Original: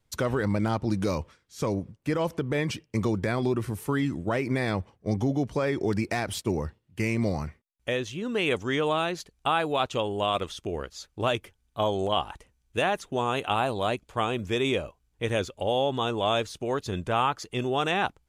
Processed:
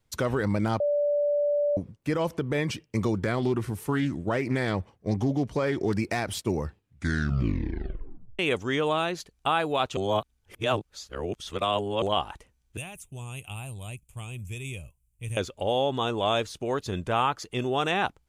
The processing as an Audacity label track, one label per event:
0.800000	1.770000	bleep 583 Hz -21.5 dBFS
3.150000	5.930000	loudspeaker Doppler distortion depth 0.15 ms
6.630000	6.630000	tape stop 1.76 s
9.970000	12.020000	reverse
12.770000	15.370000	FFT filter 130 Hz 0 dB, 250 Hz -16 dB, 490 Hz -21 dB, 910 Hz -20 dB, 1.7 kHz -23 dB, 2.5 kHz -6 dB, 4.2 kHz -20 dB, 8.7 kHz +6 dB

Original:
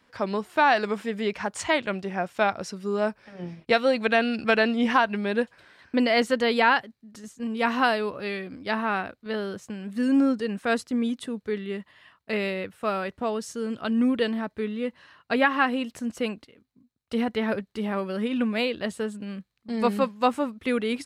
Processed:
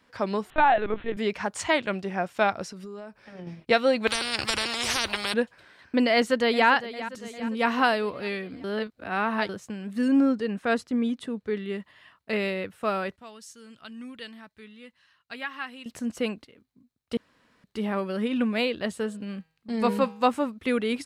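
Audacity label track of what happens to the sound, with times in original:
0.500000	1.170000	LPC vocoder at 8 kHz pitch kept
2.630000	3.470000	compression 16:1, threshold -36 dBFS
4.070000	5.340000	spectrum-flattening compressor 10:1
6.130000	6.680000	echo throw 400 ms, feedback 60%, level -14 dB
8.640000	9.490000	reverse
10.080000	11.570000	treble shelf 5.1 kHz -8 dB
13.160000	15.860000	amplifier tone stack bass-middle-treble 5-5-5
17.170000	17.640000	room tone
18.990000	20.230000	de-hum 160 Hz, notches 33

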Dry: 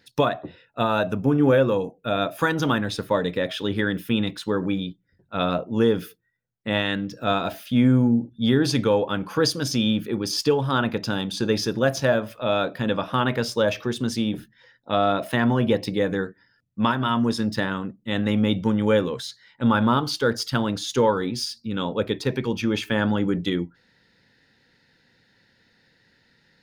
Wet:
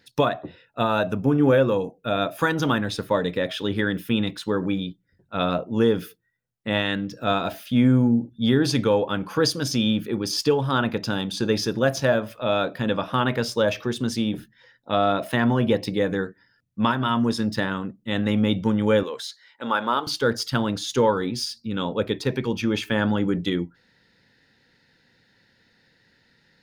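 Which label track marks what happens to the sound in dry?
19.030000	20.070000	high-pass 450 Hz

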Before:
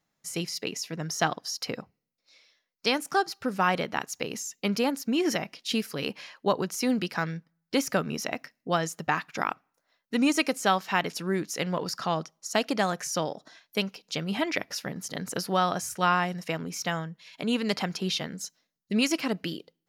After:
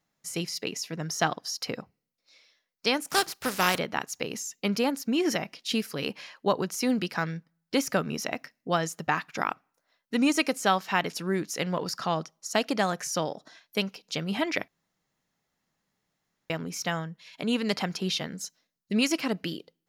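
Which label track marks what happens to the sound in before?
3.080000	3.770000	spectral contrast reduction exponent 0.48
14.680000	16.500000	room tone

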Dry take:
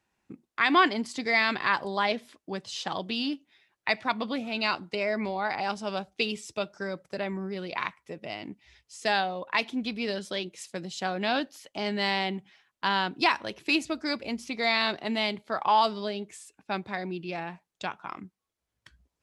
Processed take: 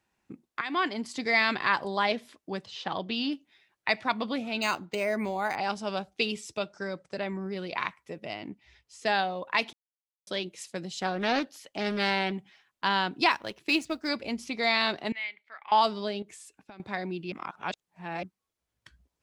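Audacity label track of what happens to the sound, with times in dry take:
0.610000	1.240000	fade in, from -13.5 dB
2.650000	3.300000	low-pass 2.9 kHz -> 6.1 kHz
4.620000	5.560000	decimation joined by straight lines rate divided by 4×
6.580000	7.460000	elliptic low-pass 9.4 kHz
8.330000	9.190000	treble shelf 4.6 kHz -7 dB
9.730000	10.270000	mute
10.910000	12.320000	loudspeaker Doppler distortion depth 0.33 ms
13.310000	14.080000	companding laws mixed up coded by A
15.120000	15.720000	band-pass filter 2.1 kHz, Q 5.1
16.220000	16.800000	compression 20:1, threshold -43 dBFS
17.320000	18.230000	reverse

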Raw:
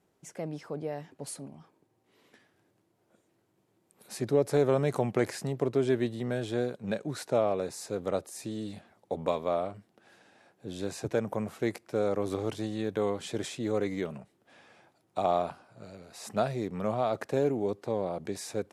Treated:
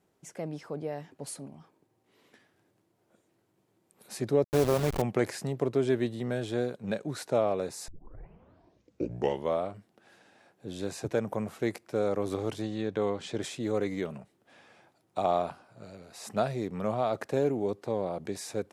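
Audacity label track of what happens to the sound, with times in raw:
4.440000	5.020000	send-on-delta sampling step -28.5 dBFS
7.880000	7.880000	tape start 1.73 s
12.620000	13.420000	low-pass 6.4 kHz

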